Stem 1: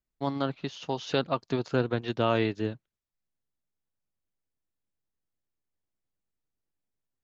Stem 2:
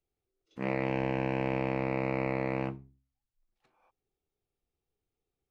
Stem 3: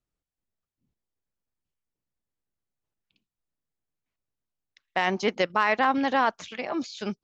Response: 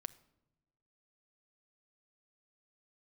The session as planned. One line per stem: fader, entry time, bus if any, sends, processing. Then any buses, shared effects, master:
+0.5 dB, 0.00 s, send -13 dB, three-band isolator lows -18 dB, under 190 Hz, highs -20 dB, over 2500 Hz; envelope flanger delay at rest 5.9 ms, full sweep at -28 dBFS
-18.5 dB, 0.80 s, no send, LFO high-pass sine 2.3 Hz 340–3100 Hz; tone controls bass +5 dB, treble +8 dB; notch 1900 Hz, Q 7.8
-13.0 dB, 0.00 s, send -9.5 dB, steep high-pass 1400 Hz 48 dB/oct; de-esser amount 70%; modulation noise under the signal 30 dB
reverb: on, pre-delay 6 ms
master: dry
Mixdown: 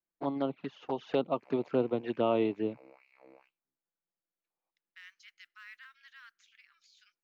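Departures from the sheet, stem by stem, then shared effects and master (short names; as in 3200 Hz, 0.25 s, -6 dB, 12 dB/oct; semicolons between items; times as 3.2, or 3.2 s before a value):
stem 1: send off; stem 2 -18.5 dB -> -28.5 dB; stem 3 -13.0 dB -> -24.5 dB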